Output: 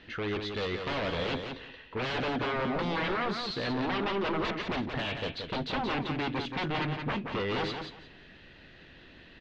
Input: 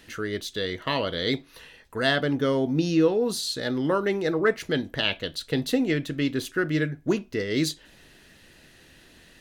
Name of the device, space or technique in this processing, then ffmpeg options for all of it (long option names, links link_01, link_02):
synthesiser wavefolder: -filter_complex "[0:a]asettb=1/sr,asplit=3[link_01][link_02][link_03];[link_01]atrim=end=2.764[link_04];[link_02]atrim=start=2.76:end=3.19,asetpts=PTS-STARTPTS,afade=type=in:duration=0.004:curve=qsin,afade=type=out:start_time=0.426:duration=0.004:curve=qsin,highpass=97[link_05];[link_03]atrim=start=3.186[link_06];[link_04][link_05]acrossfade=duration=0.004:curve1=hsin:curve2=qsin[link_07];[link_07][link_06]acrossfade=duration=0.004:curve1=qsin:curve2=hsin,aeval=exprs='0.0473*(abs(mod(val(0)/0.0473+3,4)-2)-1)':channel_layout=same,lowpass=frequency=3800:width=0.5412,lowpass=frequency=3800:width=1.3066,aecho=1:1:176|352|528:0.501|0.1|0.02"